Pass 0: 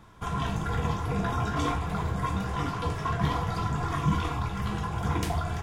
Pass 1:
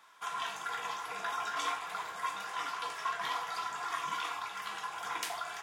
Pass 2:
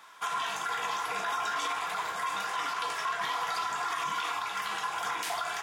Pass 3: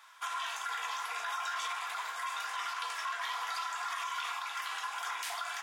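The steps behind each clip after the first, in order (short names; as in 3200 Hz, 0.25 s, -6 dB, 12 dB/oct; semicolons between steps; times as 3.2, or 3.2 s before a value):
HPF 1100 Hz 12 dB/oct
limiter -30.5 dBFS, peak gain reduction 10.5 dB; gain +7.5 dB
HPF 960 Hz 12 dB/oct; gain -3 dB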